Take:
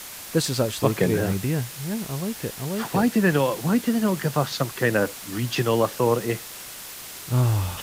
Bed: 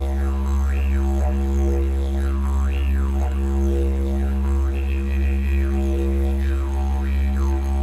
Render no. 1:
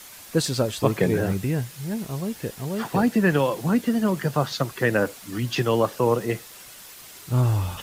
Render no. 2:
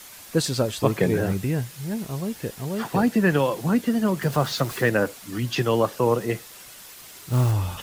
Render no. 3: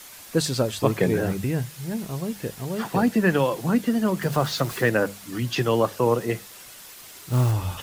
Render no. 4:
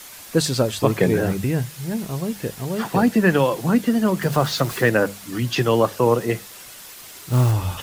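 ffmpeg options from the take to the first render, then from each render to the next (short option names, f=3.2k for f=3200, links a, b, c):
-af "afftdn=nr=7:nf=-39"
-filter_complex "[0:a]asettb=1/sr,asplit=3[a][b][c];[a]atrim=end=4.224[d];[b]atrim=start=4.22:end=4.9,asetpts=PTS-STARTPTS,afade=t=in:d=0.004:c=qsin,afade=t=out:st=0.676:d=0.004:c=qsin,aeval=exprs='val(0)+0.5*0.0224*sgn(val(0))':c=same[e];[c]atrim=start=4.896[f];[d][e]acrossfade=d=0.004:c1=hsin:c2=qsin[g];[g][f]acrossfade=d=0.004:c1=qsin:c2=hsin,asplit=3[h][i][j];[h]afade=t=out:st=6.96:d=0.02[k];[i]acrusher=bits=5:mode=log:mix=0:aa=0.000001,afade=t=in:st=6.96:d=0.02,afade=t=out:st=7.51:d=0.02[l];[j]afade=t=in:st=7.51:d=0.02[m];[k][l][m]amix=inputs=3:normalize=0"
-af "bandreject=f=50:t=h:w=6,bandreject=f=100:t=h:w=6,bandreject=f=150:t=h:w=6,bandreject=f=200:t=h:w=6"
-af "volume=3.5dB,alimiter=limit=-3dB:level=0:latency=1"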